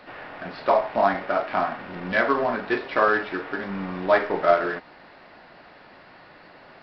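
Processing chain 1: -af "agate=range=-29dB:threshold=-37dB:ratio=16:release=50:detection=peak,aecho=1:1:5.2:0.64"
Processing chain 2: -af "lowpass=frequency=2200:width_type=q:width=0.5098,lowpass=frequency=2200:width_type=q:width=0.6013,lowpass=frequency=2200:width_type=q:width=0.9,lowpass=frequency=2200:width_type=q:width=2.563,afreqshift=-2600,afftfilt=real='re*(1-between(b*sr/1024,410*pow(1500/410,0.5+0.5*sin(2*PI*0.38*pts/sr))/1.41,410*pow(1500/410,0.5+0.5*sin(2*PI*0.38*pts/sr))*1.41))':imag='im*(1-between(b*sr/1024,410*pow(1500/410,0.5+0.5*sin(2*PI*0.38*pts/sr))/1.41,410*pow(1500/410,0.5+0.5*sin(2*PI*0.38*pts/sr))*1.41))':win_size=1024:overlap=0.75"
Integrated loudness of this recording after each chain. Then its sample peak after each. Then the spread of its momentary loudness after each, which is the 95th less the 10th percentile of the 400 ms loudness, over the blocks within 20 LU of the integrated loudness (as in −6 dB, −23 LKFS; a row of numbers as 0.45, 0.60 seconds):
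−22.0, −22.5 LKFS; −4.5, −6.0 dBFS; 10, 14 LU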